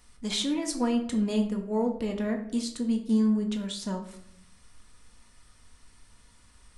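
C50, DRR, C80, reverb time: 9.0 dB, 3.0 dB, 12.0 dB, 0.70 s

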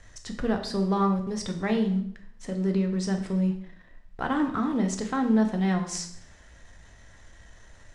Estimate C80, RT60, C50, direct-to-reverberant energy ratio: 12.0 dB, 0.65 s, 9.0 dB, 4.0 dB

